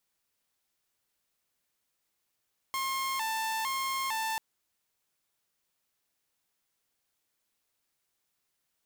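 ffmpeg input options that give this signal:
-f lavfi -i "aevalsrc='0.0422*(2*mod((978.5*t+91.5/1.1*(0.5-abs(mod(1.1*t,1)-0.5))),1)-1)':d=1.64:s=44100"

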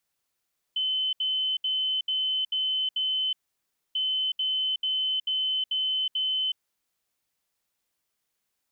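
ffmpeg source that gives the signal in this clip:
-f lavfi -i "aevalsrc='0.0631*sin(2*PI*3050*t)*clip(min(mod(mod(t,3.19),0.44),0.37-mod(mod(t,3.19),0.44))/0.005,0,1)*lt(mod(t,3.19),2.64)':d=6.38:s=44100"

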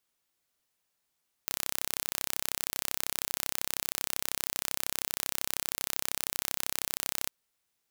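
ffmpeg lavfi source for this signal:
-f lavfi -i "aevalsrc='0.668*eq(mod(n,1345),0)':d=5.82:s=44100"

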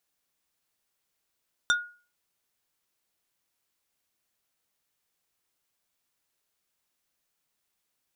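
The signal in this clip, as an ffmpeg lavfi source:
-f lavfi -i "aevalsrc='0.133*pow(10,-3*t/0.38)*sin(2*PI*1440*t)+0.0841*pow(10,-3*t/0.127)*sin(2*PI*3600*t)+0.0531*pow(10,-3*t/0.072)*sin(2*PI*5760*t)+0.0335*pow(10,-3*t/0.055)*sin(2*PI*7200*t)+0.0211*pow(10,-3*t/0.04)*sin(2*PI*9360*t)':d=0.45:s=44100"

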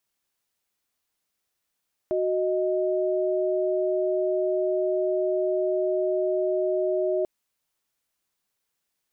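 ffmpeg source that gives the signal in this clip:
-f lavfi -i "aevalsrc='0.0596*(sin(2*PI*369.99*t)+sin(2*PI*622.25*t))':d=5.14:s=44100"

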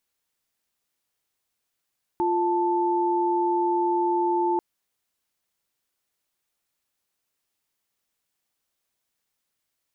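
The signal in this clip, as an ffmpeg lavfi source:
-f lavfi -i "aevalsrc='0.0708*(sin(2*PI*349.23*t)+sin(2*PI*880*t))':d=2.39:s=44100"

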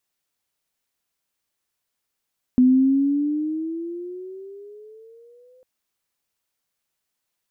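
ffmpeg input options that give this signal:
-f lavfi -i "aevalsrc='pow(10,(-10.5-40*t/3.05)/20)*sin(2*PI*250*3.05/(12.5*log(2)/12)*(exp(12.5*log(2)/12*t/3.05)-1))':d=3.05:s=44100"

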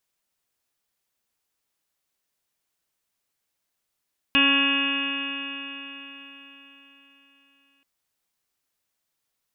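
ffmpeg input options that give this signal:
-f lavfi -i "aevalsrc='0.075*pow(10,-3*t/4.26)*sin(2*PI*275.09*t)+0.0168*pow(10,-3*t/4.26)*sin(2*PI*550.75*t)+0.0133*pow(10,-3*t/4.26)*sin(2*PI*827.52*t)+0.0398*pow(10,-3*t/4.26)*sin(2*PI*1105.97*t)+0.0188*pow(10,-3*t/4.26)*sin(2*PI*1386.64*t)+0.0501*pow(10,-3*t/4.26)*sin(2*PI*1670.07*t)+0.0168*pow(10,-3*t/4.26)*sin(2*PI*1956.81*t)+0.0158*pow(10,-3*t/4.26)*sin(2*PI*2247.36*t)+0.112*pow(10,-3*t/4.26)*sin(2*PI*2542.25*t)+0.106*pow(10,-3*t/4.26)*sin(2*PI*2841.96*t)+0.0112*pow(10,-3*t/4.26)*sin(2*PI*3146.99*t)+0.0211*pow(10,-3*t/4.26)*sin(2*PI*3457.8*t)':d=3.48:s=44100"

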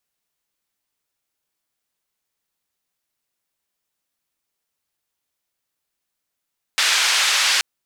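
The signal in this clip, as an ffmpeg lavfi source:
-f lavfi -i "anoisesrc=c=white:d=0.83:r=44100:seed=1,highpass=f=1300,lowpass=f=4900,volume=-5.6dB"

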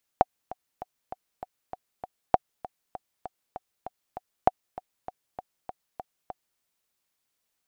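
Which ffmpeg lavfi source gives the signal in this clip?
-f lavfi -i "aevalsrc='pow(10,(-4-18.5*gte(mod(t,7*60/197),60/197))/20)*sin(2*PI*742*mod(t,60/197))*exp(-6.91*mod(t,60/197)/0.03)':d=6.39:s=44100"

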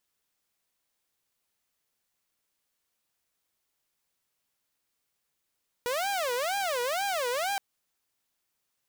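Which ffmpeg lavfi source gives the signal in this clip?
-f lavfi -i "aevalsrc='0.0562*(2*mod((643.5*t-162.5/(2*PI*2.1)*sin(2*PI*2.1*t)),1)-1)':d=1.72:s=44100"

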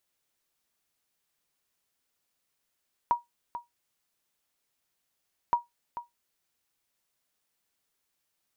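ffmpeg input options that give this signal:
-f lavfi -i "aevalsrc='0.168*(sin(2*PI*954*mod(t,2.42))*exp(-6.91*mod(t,2.42)/0.16)+0.237*sin(2*PI*954*max(mod(t,2.42)-0.44,0))*exp(-6.91*max(mod(t,2.42)-0.44,0)/0.16))':d=4.84:s=44100"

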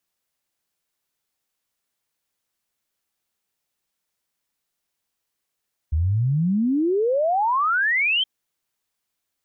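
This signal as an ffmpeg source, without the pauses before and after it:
-f lavfi -i "aevalsrc='0.133*clip(min(t,2.32-t)/0.01,0,1)*sin(2*PI*73*2.32/log(3200/73)*(exp(log(3200/73)*t/2.32)-1))':d=2.32:s=44100"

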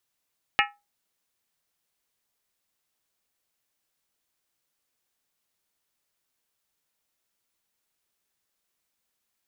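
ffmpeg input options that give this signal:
-f lavfi -i "aevalsrc='0.0891*pow(10,-3*t/0.25)*sin(2*PI*819*t)+0.0891*pow(10,-3*t/0.198)*sin(2*PI*1305.5*t)+0.0891*pow(10,-3*t/0.171)*sin(2*PI*1749.4*t)+0.0891*pow(10,-3*t/0.165)*sin(2*PI*1880.4*t)+0.0891*pow(10,-3*t/0.153)*sin(2*PI*2172.8*t)+0.0891*pow(10,-3*t/0.146)*sin(2*PI*2389.8*t)+0.0891*pow(10,-3*t/0.141)*sin(2*PI*2584.8*t)+0.0891*pow(10,-3*t/0.134)*sin(2*PI*2867.3*t)':d=0.63:s=44100"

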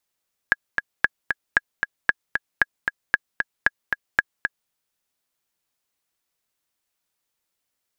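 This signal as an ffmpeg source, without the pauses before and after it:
-f lavfi -i "aevalsrc='pow(10,(-2.5-5.5*gte(mod(t,2*60/229),60/229))/20)*sin(2*PI*1660*mod(t,60/229))*exp(-6.91*mod(t,60/229)/0.03)':d=4.19:s=44100"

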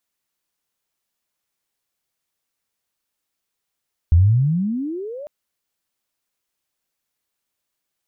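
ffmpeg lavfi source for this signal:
-f lavfi -i "aevalsrc='pow(10,(-8-22.5*t/1.15)/20)*sin(2*PI*78.7*1.15/(35.5*log(2)/12)*(exp(35.5*log(2)/12*t/1.15)-1))':d=1.15:s=44100"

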